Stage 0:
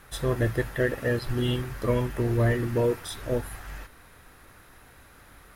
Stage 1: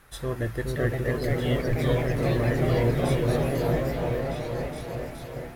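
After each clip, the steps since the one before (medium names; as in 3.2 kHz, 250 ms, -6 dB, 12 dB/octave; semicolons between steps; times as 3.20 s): delay with an opening low-pass 419 ms, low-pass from 400 Hz, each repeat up 2 oct, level 0 dB; ever faster or slower copies 564 ms, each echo +2 st, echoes 3; trim -4 dB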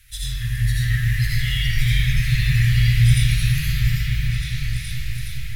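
inverse Chebyshev band-stop 270–860 Hz, stop band 60 dB; reverberation RT60 2.2 s, pre-delay 40 ms, DRR -7 dB; trim +7 dB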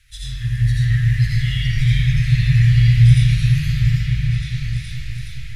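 low-pass 7.9 kHz 12 dB/octave; dynamic bell 140 Hz, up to +8 dB, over -31 dBFS, Q 0.78; trim -2.5 dB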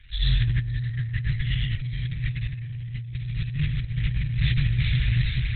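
compressor with a negative ratio -25 dBFS, ratio -1; Opus 8 kbps 48 kHz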